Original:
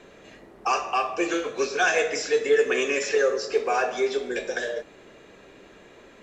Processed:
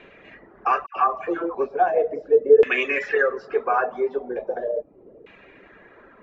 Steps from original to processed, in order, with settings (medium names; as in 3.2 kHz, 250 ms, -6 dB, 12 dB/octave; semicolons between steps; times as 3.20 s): LFO low-pass saw down 0.38 Hz 460–2600 Hz; 0.86–1.55 s: phase dispersion lows, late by 106 ms, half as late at 1.3 kHz; reverb removal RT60 0.58 s